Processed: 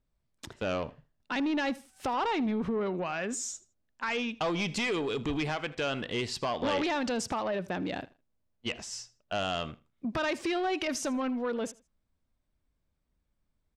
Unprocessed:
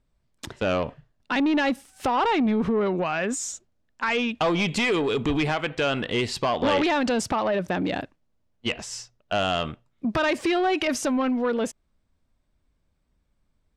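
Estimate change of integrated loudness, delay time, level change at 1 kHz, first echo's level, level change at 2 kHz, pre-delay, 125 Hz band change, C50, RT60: -7.5 dB, 80 ms, -7.5 dB, -21.0 dB, -7.0 dB, none, -7.5 dB, none, none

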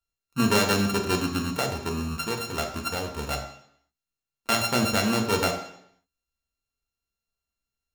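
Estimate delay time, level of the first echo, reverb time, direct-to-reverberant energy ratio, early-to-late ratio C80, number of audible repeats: none, none, 0.70 s, 2.0 dB, 10.0 dB, none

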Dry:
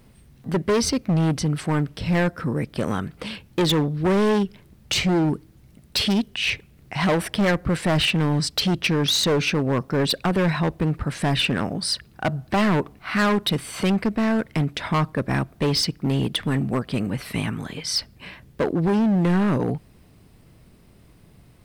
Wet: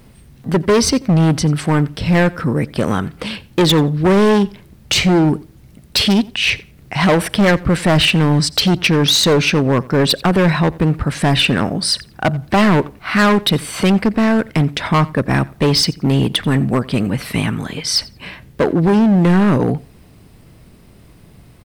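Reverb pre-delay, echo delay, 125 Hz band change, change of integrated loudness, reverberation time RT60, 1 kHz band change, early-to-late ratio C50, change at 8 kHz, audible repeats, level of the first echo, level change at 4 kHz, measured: none, 88 ms, +7.5 dB, +7.5 dB, none, +7.5 dB, none, +7.5 dB, 1, -22.5 dB, +7.5 dB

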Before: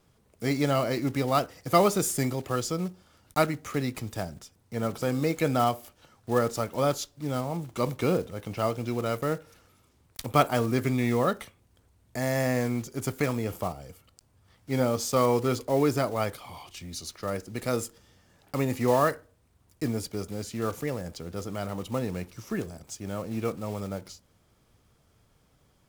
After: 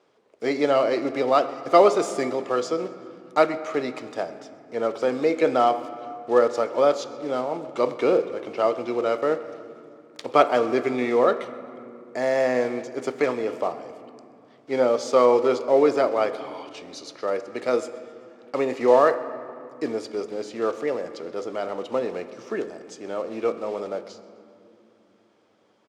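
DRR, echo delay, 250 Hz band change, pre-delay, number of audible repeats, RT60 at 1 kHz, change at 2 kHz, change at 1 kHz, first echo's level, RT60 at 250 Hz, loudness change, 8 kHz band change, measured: 11.0 dB, 0.13 s, +0.5 dB, 3 ms, 1, 2.5 s, +3.5 dB, +5.5 dB, -22.5 dB, 4.6 s, +5.0 dB, n/a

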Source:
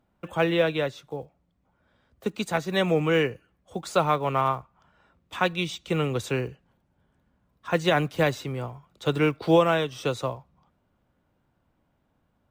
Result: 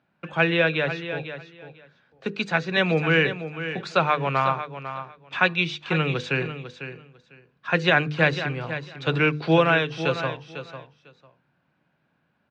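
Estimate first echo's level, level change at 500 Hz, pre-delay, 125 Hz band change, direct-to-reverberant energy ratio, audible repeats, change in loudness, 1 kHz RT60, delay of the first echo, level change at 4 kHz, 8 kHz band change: -11.0 dB, 0.0 dB, none, +3.0 dB, none, 2, +2.5 dB, none, 0.499 s, +4.0 dB, n/a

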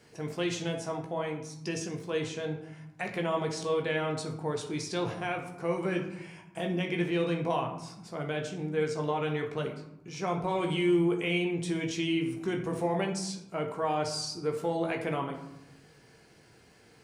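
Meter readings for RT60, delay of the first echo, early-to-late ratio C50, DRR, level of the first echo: 0.85 s, none, 7.5 dB, 2.0 dB, none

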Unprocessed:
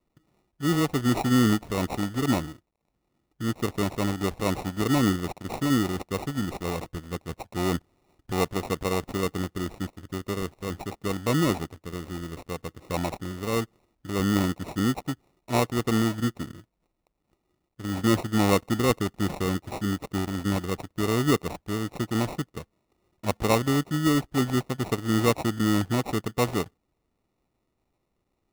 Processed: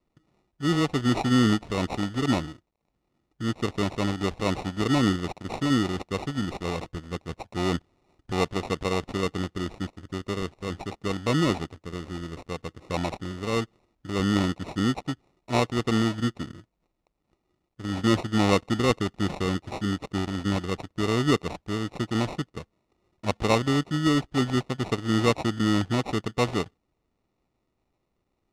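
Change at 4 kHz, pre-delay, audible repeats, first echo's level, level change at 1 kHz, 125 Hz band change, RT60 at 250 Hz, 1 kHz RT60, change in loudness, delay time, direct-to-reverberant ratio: +2.0 dB, none, none, none, 0.0 dB, 0.0 dB, none, none, 0.0 dB, none, none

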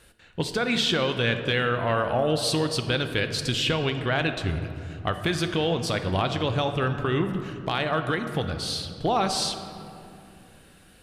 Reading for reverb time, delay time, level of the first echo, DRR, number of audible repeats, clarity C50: 2.6 s, none, none, 7.0 dB, none, 8.5 dB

